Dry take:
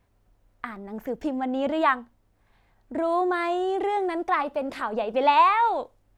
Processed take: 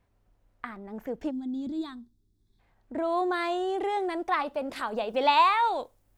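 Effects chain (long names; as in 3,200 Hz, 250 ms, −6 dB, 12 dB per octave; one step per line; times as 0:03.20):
high-shelf EQ 6,500 Hz −4 dB, from 0:03.17 +4.5 dB, from 0:04.76 +11.5 dB
0:01.31–0:02.60: gain on a spectral selection 430–3,300 Hz −22 dB
dynamic equaliser 4,100 Hz, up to +6 dB, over −45 dBFS, Q 1.5
level −3.5 dB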